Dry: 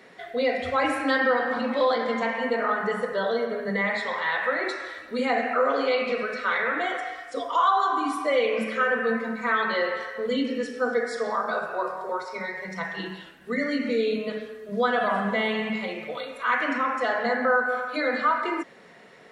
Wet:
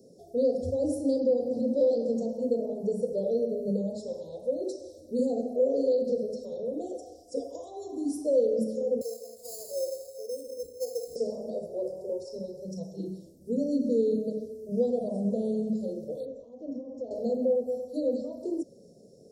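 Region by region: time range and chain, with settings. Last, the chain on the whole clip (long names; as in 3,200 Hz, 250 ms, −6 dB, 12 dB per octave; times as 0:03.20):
0:09.01–0:11.16: four-pole ladder high-pass 510 Hz, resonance 55% + sample-rate reduction 5,800 Hz
0:16.25–0:17.11: Butterworth low-pass 6,300 Hz 48 dB per octave + parametric band 4,800 Hz −13 dB 0.86 octaves + downward compressor 10 to 1, threshold −28 dBFS
whole clip: Chebyshev band-stop filter 570–5,200 Hz, order 4; parametric band 92 Hz +8.5 dB 0.9 octaves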